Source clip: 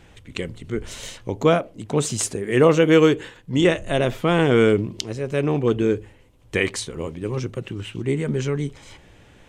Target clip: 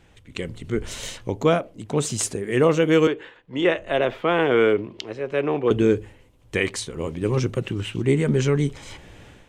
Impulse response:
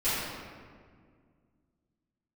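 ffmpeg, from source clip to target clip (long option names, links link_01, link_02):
-filter_complex "[0:a]asettb=1/sr,asplit=3[link_01][link_02][link_03];[link_01]atrim=end=3.074[link_04];[link_02]atrim=start=3.07:end=5.71,asetpts=PTS-STARTPTS,afade=type=in:duration=0.004:curve=qsin,afade=type=out:start_time=2.636:duration=0.004:curve=qsin,acrossover=split=320 3700:gain=0.224 1 0.112[link_05][link_06][link_07];[link_05][link_06][link_07]amix=inputs=3:normalize=0[link_08];[link_03]atrim=start=5.706[link_09];[link_04][link_08]acrossfade=duration=0.004:curve1=hsin:curve2=qsin[link_10];[link_10][link_09]acrossfade=duration=0.004:curve1=qsin:curve2=hsin,dynaudnorm=framelen=290:gausssize=3:maxgain=11dB,volume=-5.5dB"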